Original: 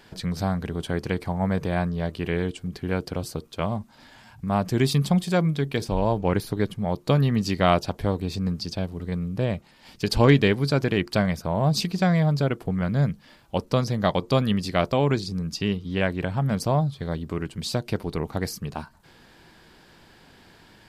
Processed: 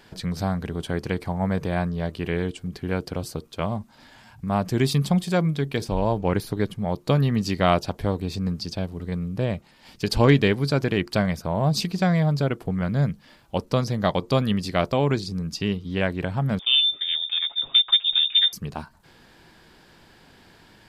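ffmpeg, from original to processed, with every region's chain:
ffmpeg -i in.wav -filter_complex "[0:a]asettb=1/sr,asplit=3[link_01][link_02][link_03];[link_01]atrim=end=16.594[link_04];[link_02]atrim=start=16.59:end=18.53,asetpts=PTS-STARTPTS,afade=type=in:duration=0.004:curve=qsin,afade=type=out:start_time=1.936:duration=0.004:curve=qsin,asubboost=boost=11:cutoff=150,lowpass=frequency=3100:width_type=q:width=0.5098,lowpass=frequency=3100:width_type=q:width=0.6013,lowpass=frequency=3100:width_type=q:width=0.9,lowpass=frequency=3100:width_type=q:width=2.563,afreqshift=-3700,aecho=1:1:7.3:0.45,atrim=end_sample=85554[link_05];[link_03]atrim=start=18.526[link_06];[link_04][link_05]acrossfade=duration=0.004:curve1=hsin:curve2=qsin[link_07];[link_07][link_06]acrossfade=duration=0.004:curve1=qsin:curve2=hsin" out.wav

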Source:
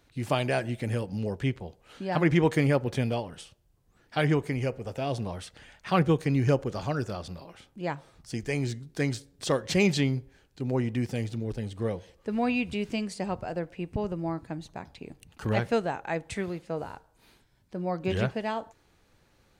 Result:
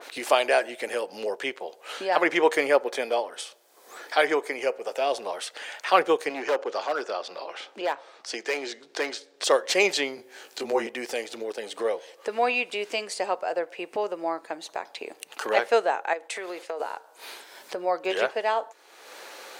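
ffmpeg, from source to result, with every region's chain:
ffmpeg -i in.wav -filter_complex "[0:a]asettb=1/sr,asplit=3[link_01][link_02][link_03];[link_01]atrim=end=2.804[link_04];[link_02]atrim=start=2.8:end=4.59,asetpts=PTS-STARTPTS,afade=type=in:duration=0.004:curve=qsin,afade=type=out:start_time=1.786:duration=0.004:curve=qsin,highpass=150,bandreject=frequency=2800:width=10[link_05];[link_03]atrim=start=4.586[link_06];[link_04][link_05]acrossfade=duration=0.004:curve1=hsin:curve2=qsin[link_07];[link_07][link_06]acrossfade=duration=0.004:curve1=qsin:curve2=hsin,asettb=1/sr,asplit=3[link_08][link_09][link_10];[link_08]atrim=end=6.294[link_11];[link_09]atrim=start=6.29:end=9.44,asetpts=PTS-STARTPTS,afade=type=in:duration=0.004:curve=qsin,afade=type=out:start_time=3.146:duration=0.004:curve=qsin,acrossover=split=170 6400:gain=0.2 1 0.112[link_12][link_13][link_14];[link_12][link_13][link_14]amix=inputs=3:normalize=0,asoftclip=type=hard:threshold=-25dB[link_15];[link_10]atrim=start=9.436[link_16];[link_11][link_15]acrossfade=duration=0.004:curve1=hsin:curve2=qsin[link_17];[link_17][link_16]acrossfade=duration=0.004:curve1=qsin:curve2=hsin,asettb=1/sr,asplit=3[link_18][link_19][link_20];[link_18]atrim=end=10.174[link_21];[link_19]atrim=start=10.17:end=10.87,asetpts=PTS-STARTPTS,afade=type=in:duration=0.004:curve=qsin,afade=type=out:start_time=0.696:duration=0.004:curve=qsin,afreqshift=-15,bass=frequency=250:gain=5,treble=frequency=4000:gain=3,asplit=2[link_22][link_23];[link_23]adelay=18,volume=-3.5dB[link_24];[link_22][link_24]amix=inputs=2:normalize=0,atrim=end_sample=30870[link_25];[link_20]atrim=start=10.866[link_26];[link_21][link_25]acrossfade=duration=0.004:curve1=hsin:curve2=qsin[link_27];[link_27][link_26]acrossfade=duration=0.004:curve1=qsin:curve2=hsin,asettb=1/sr,asplit=3[link_28][link_29][link_30];[link_28]atrim=end=16.134[link_31];[link_29]atrim=start=16.13:end=16.8,asetpts=PTS-STARTPTS,afade=type=in:duration=0.004:curve=qsin,afade=type=out:start_time=0.666:duration=0.004:curve=qsin,agate=range=-33dB:threshold=-50dB:ratio=3:release=100:detection=peak,highpass=240,acompressor=threshold=-37dB:ratio=3:attack=3.2:release=140:knee=1:detection=peak[link_32];[link_30]atrim=start=16.796[link_33];[link_31][link_32]acrossfade=duration=0.004:curve1=hsin:curve2=qsin[link_34];[link_34][link_33]acrossfade=duration=0.004:curve1=qsin:curve2=hsin,highpass=frequency=440:width=0.5412,highpass=frequency=440:width=1.3066,acompressor=mode=upward:threshold=-35dB:ratio=2.5,adynamicequalizer=threshold=0.00794:dfrequency=2100:dqfactor=0.7:tfrequency=2100:tqfactor=0.7:attack=5:release=100:ratio=0.375:range=1.5:mode=cutabove:tftype=highshelf,volume=7.5dB" out.wav

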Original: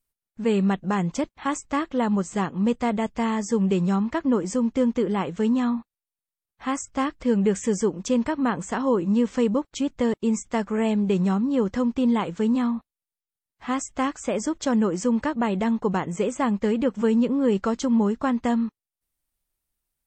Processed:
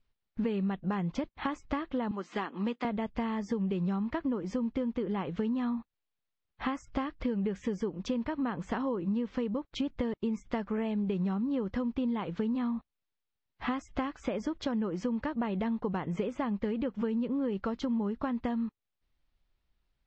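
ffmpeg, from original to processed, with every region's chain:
ffmpeg -i in.wav -filter_complex "[0:a]asettb=1/sr,asplit=3[link_01][link_02][link_03];[link_01]atrim=end=2.114[link_04];[link_02]atrim=start=2.11:end=2.85,asetpts=PTS-STARTPTS,afade=type=in:duration=0.004:curve=qsin,afade=type=out:start_time=0.736:duration=0.004:curve=qsin,highpass=frequency=280:width=0.5412,highpass=frequency=280:width=1.3066,equalizer=frequency=530:width_type=o:width=1.1:gain=-7.5,acrossover=split=5300[link_05][link_06];[link_06]acompressor=threshold=-47dB:ratio=4:attack=1:release=60[link_07];[link_05][link_07]amix=inputs=2:normalize=0[link_08];[link_03]atrim=start=2.846[link_09];[link_04][link_08]acrossfade=duration=0.004:curve1=hsin:curve2=qsin[link_10];[link_10][link_09]acrossfade=duration=0.004:curve1=qsin:curve2=hsin,acompressor=threshold=-34dB:ratio=10,lowpass=frequency=4400:width=0.5412,lowpass=frequency=4400:width=1.3066,lowshelf=frequency=120:gain=6,volume=4dB" out.wav

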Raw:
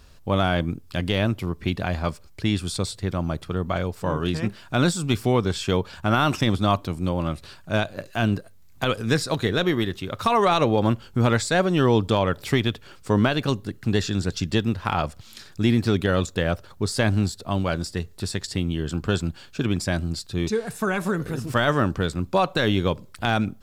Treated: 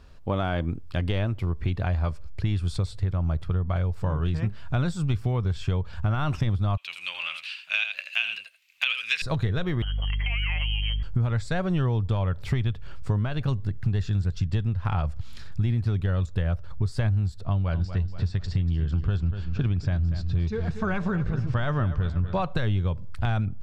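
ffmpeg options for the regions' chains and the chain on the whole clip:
ffmpeg -i in.wav -filter_complex "[0:a]asettb=1/sr,asplit=3[link_01][link_02][link_03];[link_01]atrim=end=6.774[link_04];[link_02]atrim=start=6.77:end=9.22,asetpts=PTS-STARTPTS,afade=type=in:duration=0.004:curve=qsin,afade=type=out:start_time=2.446:duration=0.004:curve=qsin,aecho=1:1:82:0.355,atrim=end_sample=108045,acontrast=47,highpass=frequency=2600:width_type=q:width=6.5[link_05];[link_03]atrim=start=9.216[link_06];[link_04][link_05]acrossfade=duration=0.004:curve1=hsin:curve2=qsin[link_07];[link_07][link_06]acrossfade=duration=0.004:curve1=qsin:curve2=hsin,asettb=1/sr,asplit=3[link_08][link_09][link_10];[link_08]atrim=end=9.824[link_11];[link_09]atrim=start=9.82:end=11.03,asetpts=PTS-STARTPTS,afade=type=in:duration=0.004:curve=qsin,afade=type=out:start_time=1.206:duration=0.004:curve=qsin,acompressor=threshold=-26dB:ratio=2.5:attack=3.2:release=140:knee=1:detection=peak,lowpass=frequency=2800:width_type=q:width=0.5098,lowpass=frequency=2800:width_type=q:width=0.6013,lowpass=frequency=2800:width_type=q:width=0.9,lowpass=frequency=2800:width_type=q:width=2.563,afreqshift=-3300,aeval=exprs='val(0)+0.0112*(sin(2*PI*50*n/s)+sin(2*PI*2*50*n/s)/2+sin(2*PI*3*50*n/s)/3+sin(2*PI*4*50*n/s)/4+sin(2*PI*5*50*n/s)/5)':channel_layout=same[link_12];[link_10]atrim=start=11.026[link_13];[link_11][link_12]acrossfade=duration=0.004:curve1=hsin:curve2=qsin[link_14];[link_14][link_13]acrossfade=duration=0.004:curve1=qsin:curve2=hsin,asettb=1/sr,asplit=3[link_15][link_16][link_17];[link_15]atrim=end=17.464[link_18];[link_16]atrim=start=17.46:end=22.42,asetpts=PTS-STARTPTS,afade=type=in:duration=0.004:curve=qsin,afade=type=out:start_time=4.956:duration=0.004:curve=qsin,lowpass=frequency=6100:width=0.5412,lowpass=frequency=6100:width=1.3066,aecho=1:1:239|478|717|956:0.224|0.0963|0.0414|0.0178,atrim=end_sample=218736[link_19];[link_17]atrim=start=22.416[link_20];[link_18][link_19]acrossfade=duration=0.004:curve1=hsin:curve2=qsin[link_21];[link_21][link_20]acrossfade=duration=0.004:curve1=qsin:curve2=hsin,lowpass=frequency=2200:poles=1,asubboost=boost=9.5:cutoff=93,acompressor=threshold=-22dB:ratio=6" out.wav

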